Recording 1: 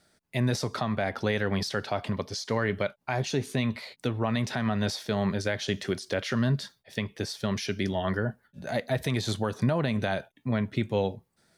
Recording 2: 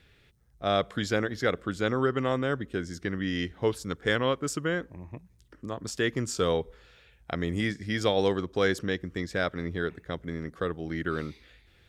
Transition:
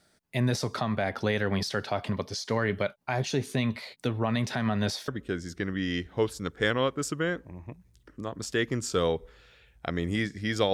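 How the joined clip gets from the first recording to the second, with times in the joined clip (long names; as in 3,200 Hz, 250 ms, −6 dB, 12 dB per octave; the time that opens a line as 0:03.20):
recording 1
0:05.08: continue with recording 2 from 0:02.53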